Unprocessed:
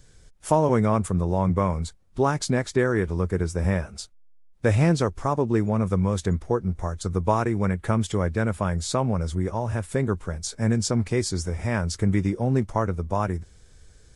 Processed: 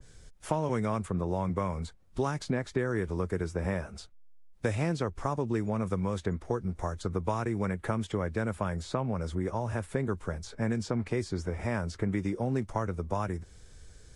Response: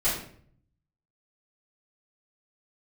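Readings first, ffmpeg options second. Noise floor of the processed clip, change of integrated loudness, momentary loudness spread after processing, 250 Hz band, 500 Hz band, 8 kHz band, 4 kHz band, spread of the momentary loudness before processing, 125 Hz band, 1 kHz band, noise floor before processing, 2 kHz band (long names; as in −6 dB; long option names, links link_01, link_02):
−54 dBFS, −7.5 dB, 4 LU, −7.5 dB, −7.0 dB, −13.5 dB, −10.0 dB, 7 LU, −8.5 dB, −7.5 dB, −53 dBFS, −6.5 dB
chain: -filter_complex "[0:a]acrossover=split=210|1800|3600[link_01][link_02][link_03][link_04];[link_01]acompressor=threshold=-35dB:ratio=4[link_05];[link_02]acompressor=threshold=-30dB:ratio=4[link_06];[link_03]acompressor=threshold=-43dB:ratio=4[link_07];[link_04]acompressor=threshold=-49dB:ratio=4[link_08];[link_05][link_06][link_07][link_08]amix=inputs=4:normalize=0,adynamicequalizer=threshold=0.00316:dfrequency=2100:dqfactor=0.7:tfrequency=2100:tqfactor=0.7:attack=5:release=100:ratio=0.375:range=2:mode=cutabove:tftype=highshelf"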